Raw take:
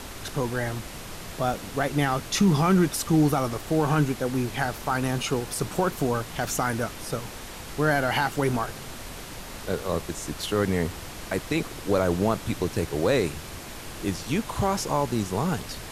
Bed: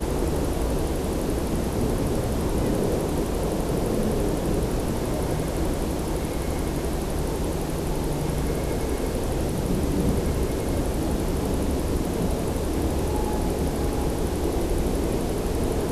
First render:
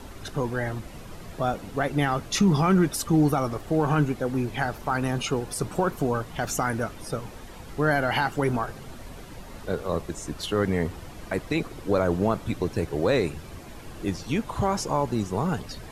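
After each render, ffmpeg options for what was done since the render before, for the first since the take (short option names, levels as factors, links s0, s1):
-af "afftdn=nr=10:nf=-39"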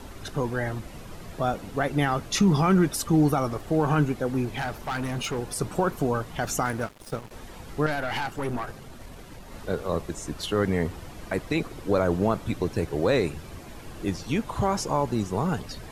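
-filter_complex "[0:a]asettb=1/sr,asplit=3[s0][s1][s2];[s0]atrim=end=4.454[s3];[s1]atrim=start=4.45:end=5.39,asetpts=PTS-STARTPTS,afade=t=in:d=0.004:c=qsin,afade=t=out:st=0.936:d=0.004:c=qsin,asoftclip=type=hard:threshold=0.0531[s4];[s2]atrim=start=5.386[s5];[s3][s4]acrossfade=d=0.004:c1=hsin:c2=qsin[s6];[s6][s5]acrossfade=d=0.004:c1=qsin:c2=hsin,asettb=1/sr,asplit=3[s7][s8][s9];[s7]atrim=end=6.654[s10];[s8]atrim=start=6.65:end=7.31,asetpts=PTS-STARTPTS,afade=t=in:d=0.004:c=qsin,afade=t=out:st=0.656:d=0.004:c=qsin,aeval=exprs='sgn(val(0))*max(abs(val(0))-0.0112,0)':c=same[s11];[s9]atrim=start=7.306[s12];[s10][s11]acrossfade=d=0.004:c1=hsin:c2=qsin[s13];[s13][s12]acrossfade=d=0.004:c1=qsin:c2=hsin,asettb=1/sr,asplit=3[s14][s15][s16];[s14]atrim=end=7.864[s17];[s15]atrim=start=7.86:end=9.52,asetpts=PTS-STARTPTS,afade=t=in:d=0.004:c=qsin,afade=t=out:st=1.656:d=0.004:c=qsin,aeval=exprs='(tanh(15.8*val(0)+0.5)-tanh(0.5))/15.8':c=same[s18];[s16]atrim=start=9.516[s19];[s17][s18]acrossfade=d=0.004:c1=hsin:c2=qsin[s20];[s20][s19]acrossfade=d=0.004:c1=qsin:c2=hsin"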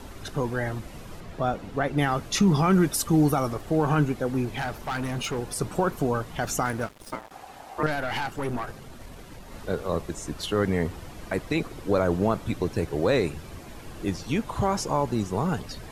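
-filter_complex "[0:a]asettb=1/sr,asplit=3[s0][s1][s2];[s0]atrim=end=1.204[s3];[s1]atrim=start=1.2:end=1.98,asetpts=PTS-STARTPTS,afade=t=in:d=0.004:c=qsin,afade=t=out:st=0.776:d=0.004:c=qsin,highshelf=f=6400:g=-10.5[s4];[s2]atrim=start=1.976[s5];[s3][s4]acrossfade=d=0.004:c1=hsin:c2=qsin[s6];[s6][s5]acrossfade=d=0.004:c1=qsin:c2=hsin,asettb=1/sr,asplit=3[s7][s8][s9];[s7]atrim=end=2.734[s10];[s8]atrim=start=2.73:end=3.53,asetpts=PTS-STARTPTS,afade=t=in:d=0.004:c=qsin,afade=t=out:st=0.796:d=0.004:c=qsin,highshelf=f=7300:g=5.5[s11];[s9]atrim=start=3.526[s12];[s10][s11]acrossfade=d=0.004:c1=hsin:c2=qsin[s13];[s13][s12]acrossfade=d=0.004:c1=qsin:c2=hsin,asettb=1/sr,asplit=3[s14][s15][s16];[s14]atrim=end=7.124[s17];[s15]atrim=start=7.12:end=7.83,asetpts=PTS-STARTPTS,afade=t=in:d=0.004:c=qsin,afade=t=out:st=0.706:d=0.004:c=qsin,aeval=exprs='val(0)*sin(2*PI*770*n/s)':c=same[s18];[s16]atrim=start=7.826[s19];[s17][s18]acrossfade=d=0.004:c1=hsin:c2=qsin[s20];[s20][s19]acrossfade=d=0.004:c1=qsin:c2=hsin"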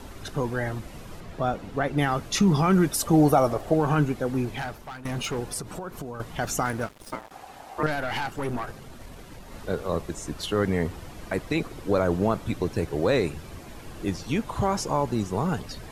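-filter_complex "[0:a]asettb=1/sr,asplit=3[s0][s1][s2];[s0]atrim=end=3.024[s3];[s1]atrim=start=3.02:end=3.74,asetpts=PTS-STARTPTS,afade=t=in:d=0.004:c=qsin,afade=t=out:st=0.716:d=0.004:c=qsin,equalizer=f=630:t=o:w=1:g=9.5[s4];[s2]atrim=start=3.736[s5];[s3][s4]acrossfade=d=0.004:c1=hsin:c2=qsin[s6];[s6][s5]acrossfade=d=0.004:c1=qsin:c2=hsin,asettb=1/sr,asplit=3[s7][s8][s9];[s7]atrim=end=5.594[s10];[s8]atrim=start=5.59:end=6.2,asetpts=PTS-STARTPTS,afade=t=in:d=0.004:c=qsin,afade=t=out:st=0.606:d=0.004:c=qsin,acompressor=threshold=0.0251:ratio=5:attack=3.2:release=140:knee=1:detection=peak[s11];[s9]atrim=start=6.196[s12];[s10][s11]acrossfade=d=0.004:c1=hsin:c2=qsin[s13];[s13][s12]acrossfade=d=0.004:c1=qsin:c2=hsin,asplit=2[s14][s15];[s14]atrim=end=5.05,asetpts=PTS-STARTPTS,afade=t=out:st=4.49:d=0.56:silence=0.16788[s16];[s15]atrim=start=5.05,asetpts=PTS-STARTPTS,afade=t=in:d=0.004:c=hsin:silence=0.16788[s17];[s16][s17]concat=n=2:v=0:a=1"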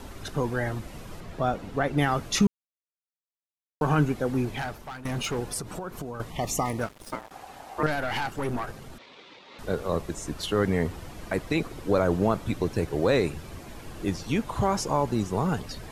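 -filter_complex "[0:a]asettb=1/sr,asplit=3[s0][s1][s2];[s0]atrim=end=6.304[s3];[s1]atrim=start=6.3:end=6.79,asetpts=PTS-STARTPTS,afade=t=in:d=0.004:c=qsin,afade=t=out:st=0.486:d=0.004:c=qsin,asuperstop=centerf=1500:order=12:qfactor=2.8[s4];[s2]atrim=start=6.786[s5];[s3][s4]acrossfade=d=0.004:c1=hsin:c2=qsin[s6];[s6][s5]acrossfade=d=0.004:c1=qsin:c2=hsin,asettb=1/sr,asplit=3[s7][s8][s9];[s7]atrim=end=8.984[s10];[s8]atrim=start=8.98:end=9.59,asetpts=PTS-STARTPTS,afade=t=in:d=0.004:c=qsin,afade=t=out:st=0.606:d=0.004:c=qsin,highpass=420,equalizer=f=680:t=q:w=4:g=-8,equalizer=f=1600:t=q:w=4:g=-5,equalizer=f=2300:t=q:w=4:g=5,equalizer=f=3600:t=q:w=4:g=8,lowpass=f=4900:w=0.5412,lowpass=f=4900:w=1.3066[s11];[s9]atrim=start=9.586[s12];[s10][s11]acrossfade=d=0.004:c1=hsin:c2=qsin[s13];[s13][s12]acrossfade=d=0.004:c1=qsin:c2=hsin,asplit=3[s14][s15][s16];[s14]atrim=end=2.47,asetpts=PTS-STARTPTS,afade=t=out:st=2.466:d=0.004:c=hsin[s17];[s15]atrim=start=2.47:end=3.81,asetpts=PTS-STARTPTS,volume=0[s18];[s16]atrim=start=3.81,asetpts=PTS-STARTPTS,afade=t=in:d=0.004:c=hsin[s19];[s17][s18][s19]concat=n=3:v=0:a=1"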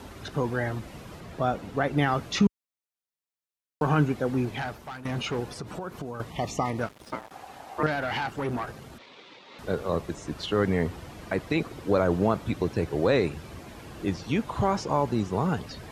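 -filter_complex "[0:a]acrossover=split=5500[s0][s1];[s1]acompressor=threshold=0.00141:ratio=4:attack=1:release=60[s2];[s0][s2]amix=inputs=2:normalize=0,highpass=58"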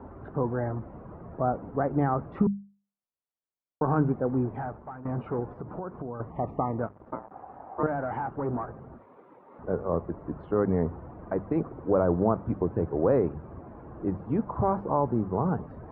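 -af "lowpass=f=1200:w=0.5412,lowpass=f=1200:w=1.3066,bandreject=f=50:t=h:w=6,bandreject=f=100:t=h:w=6,bandreject=f=150:t=h:w=6,bandreject=f=200:t=h:w=6"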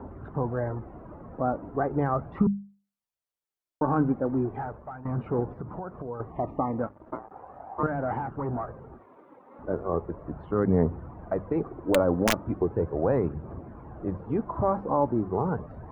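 -af "aeval=exprs='(mod(3.55*val(0)+1,2)-1)/3.55':c=same,aphaser=in_gain=1:out_gain=1:delay=4:decay=0.37:speed=0.37:type=triangular"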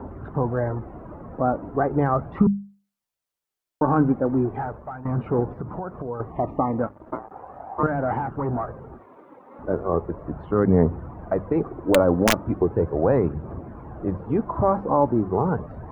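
-af "volume=1.78"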